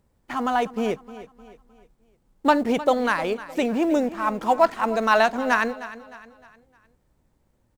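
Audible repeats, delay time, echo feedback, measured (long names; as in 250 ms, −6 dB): 3, 307 ms, 41%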